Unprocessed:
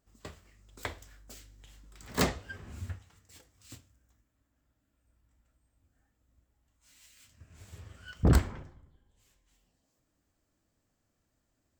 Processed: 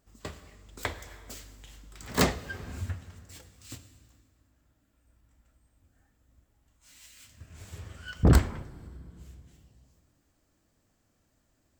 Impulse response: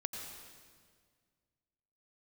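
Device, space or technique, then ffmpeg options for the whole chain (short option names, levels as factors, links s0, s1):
compressed reverb return: -filter_complex "[0:a]asplit=2[s0][s1];[1:a]atrim=start_sample=2205[s2];[s1][s2]afir=irnorm=-1:irlink=0,acompressor=threshold=0.01:ratio=5,volume=0.501[s3];[s0][s3]amix=inputs=2:normalize=0,volume=1.41"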